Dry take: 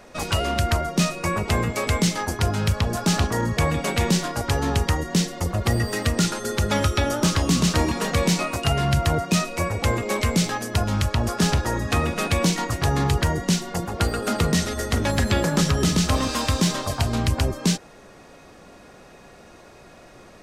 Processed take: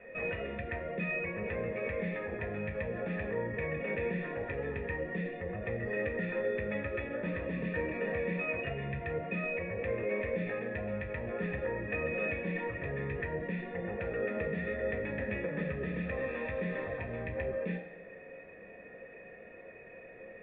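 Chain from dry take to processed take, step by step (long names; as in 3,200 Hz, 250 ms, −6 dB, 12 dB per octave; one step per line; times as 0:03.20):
in parallel at −1 dB: compressor whose output falls as the input rises −30 dBFS, ratio −1
on the sum: formant resonators in series e
convolution reverb RT60 1.0 s, pre-delay 3 ms, DRR 0 dB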